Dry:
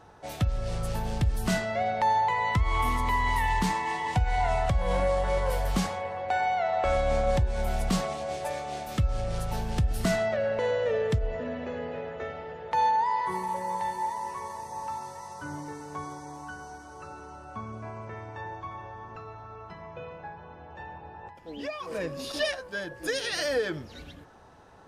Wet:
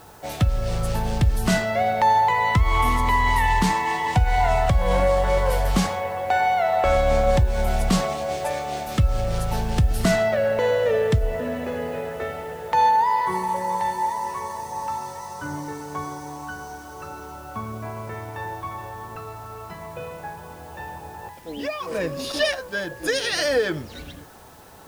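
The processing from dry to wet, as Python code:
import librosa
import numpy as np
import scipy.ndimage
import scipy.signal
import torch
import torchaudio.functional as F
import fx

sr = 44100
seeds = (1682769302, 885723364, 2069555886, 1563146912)

y = fx.quant_dither(x, sr, seeds[0], bits=10, dither='triangular')
y = F.gain(torch.from_numpy(y), 6.5).numpy()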